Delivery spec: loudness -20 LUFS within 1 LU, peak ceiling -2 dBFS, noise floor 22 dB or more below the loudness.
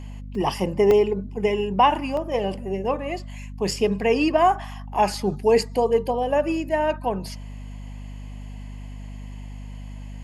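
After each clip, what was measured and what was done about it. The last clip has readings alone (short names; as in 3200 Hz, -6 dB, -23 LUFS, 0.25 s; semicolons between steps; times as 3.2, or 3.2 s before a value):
dropouts 5; longest dropout 1.8 ms; hum 50 Hz; harmonics up to 250 Hz; hum level -33 dBFS; loudness -22.5 LUFS; peak -7.0 dBFS; loudness target -20.0 LUFS
-> interpolate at 0.35/0.91/2.17/3.71/5.14, 1.8 ms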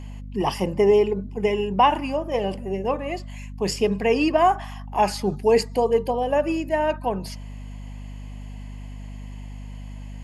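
dropouts 0; hum 50 Hz; harmonics up to 250 Hz; hum level -33 dBFS
-> de-hum 50 Hz, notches 5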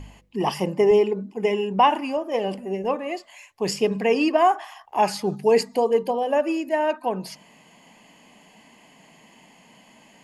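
hum none; loudness -23.0 LUFS; peak -7.5 dBFS; loudness target -20.0 LUFS
-> gain +3 dB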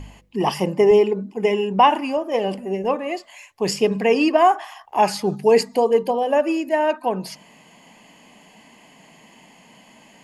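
loudness -20.0 LUFS; peak -4.5 dBFS; noise floor -51 dBFS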